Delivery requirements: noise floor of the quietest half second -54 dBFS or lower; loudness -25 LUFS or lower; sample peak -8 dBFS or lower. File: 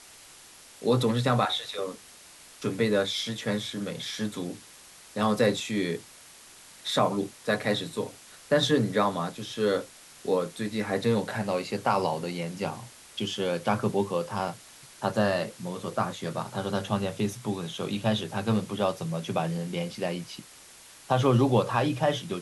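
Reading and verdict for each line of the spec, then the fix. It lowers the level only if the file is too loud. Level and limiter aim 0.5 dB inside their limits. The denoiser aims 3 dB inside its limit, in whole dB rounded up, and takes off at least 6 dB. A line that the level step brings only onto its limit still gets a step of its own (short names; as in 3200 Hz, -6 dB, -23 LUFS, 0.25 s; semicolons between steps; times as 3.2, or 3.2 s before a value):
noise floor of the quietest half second -51 dBFS: fail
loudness -28.5 LUFS: OK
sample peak -10.0 dBFS: OK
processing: denoiser 6 dB, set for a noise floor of -51 dBFS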